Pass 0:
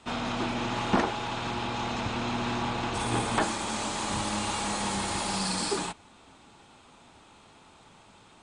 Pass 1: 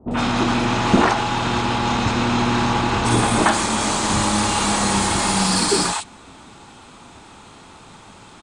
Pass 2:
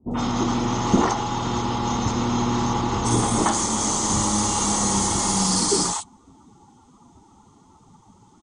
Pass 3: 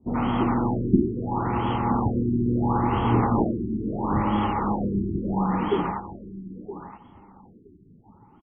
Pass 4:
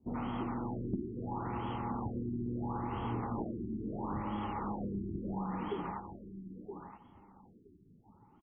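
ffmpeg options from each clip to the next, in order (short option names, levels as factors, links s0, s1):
-filter_complex "[0:a]asplit=2[s0][s1];[s1]asoftclip=type=tanh:threshold=0.0708,volume=0.562[s2];[s0][s2]amix=inputs=2:normalize=0,acrossover=split=620|2900[s3][s4][s5];[s4]adelay=80[s6];[s5]adelay=110[s7];[s3][s6][s7]amix=inputs=3:normalize=0,volume=2.82"
-af "afftdn=nr=14:nf=-37,equalizer=f=630:t=o:w=0.33:g=-6,equalizer=f=1600:t=o:w=0.33:g=-12,equalizer=f=2500:t=o:w=0.33:g=-12,equalizer=f=4000:t=o:w=0.33:g=-5,equalizer=f=6300:t=o:w=0.33:g=10,volume=0.75"
-af "aecho=1:1:969|1938:0.224|0.0358,afftfilt=real='re*lt(b*sr/1024,390*pow(3400/390,0.5+0.5*sin(2*PI*0.74*pts/sr)))':imag='im*lt(b*sr/1024,390*pow(3400/390,0.5+0.5*sin(2*PI*0.74*pts/sr)))':win_size=1024:overlap=0.75"
-af "acompressor=threshold=0.0501:ratio=3,volume=0.355"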